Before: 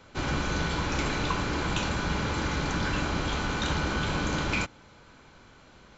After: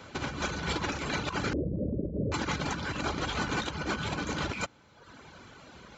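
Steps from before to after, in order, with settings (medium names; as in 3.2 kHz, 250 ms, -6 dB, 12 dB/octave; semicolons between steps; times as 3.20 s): in parallel at -11 dB: saturation -28 dBFS, distortion -12 dB; on the sum: reverb removal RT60 0.9 s; 1.53–2.32 s: steep low-pass 600 Hz 96 dB/octave; compressor with a negative ratio -32 dBFS, ratio -0.5; high-pass 64 Hz; trim +1 dB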